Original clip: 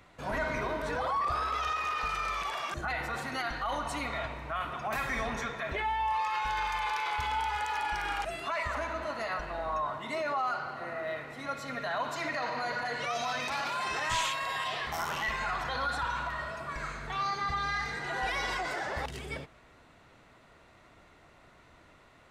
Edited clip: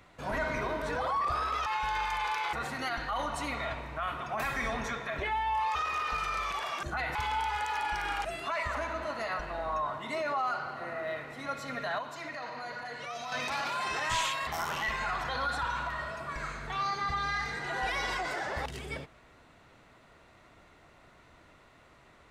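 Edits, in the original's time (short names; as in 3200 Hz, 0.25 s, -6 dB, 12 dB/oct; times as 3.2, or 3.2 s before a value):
1.66–3.06 swap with 6.28–7.15
11.99–13.32 gain -6.5 dB
14.47–14.87 cut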